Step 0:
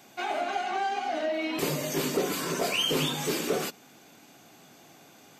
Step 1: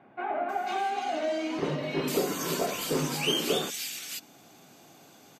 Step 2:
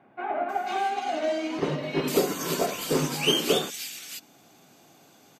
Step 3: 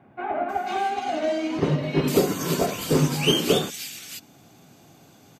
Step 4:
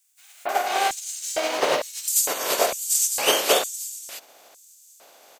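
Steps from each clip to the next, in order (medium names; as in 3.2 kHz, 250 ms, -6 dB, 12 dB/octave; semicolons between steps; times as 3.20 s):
bands offset in time lows, highs 490 ms, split 2 kHz
upward expansion 1.5:1, over -37 dBFS; trim +5.5 dB
peaking EQ 75 Hz +14.5 dB 2.4 oct; trim +1 dB
spectral contrast reduction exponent 0.53; LFO high-pass square 1.1 Hz 570–7300 Hz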